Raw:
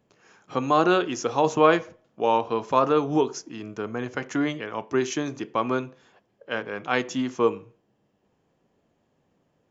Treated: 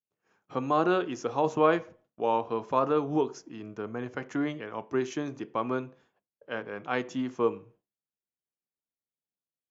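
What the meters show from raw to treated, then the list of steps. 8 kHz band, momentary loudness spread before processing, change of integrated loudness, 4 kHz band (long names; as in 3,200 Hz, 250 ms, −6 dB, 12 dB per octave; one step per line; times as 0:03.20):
can't be measured, 13 LU, −5.0 dB, −9.5 dB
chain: downward expander −48 dBFS
high-shelf EQ 2,800 Hz −8.5 dB
level −4.5 dB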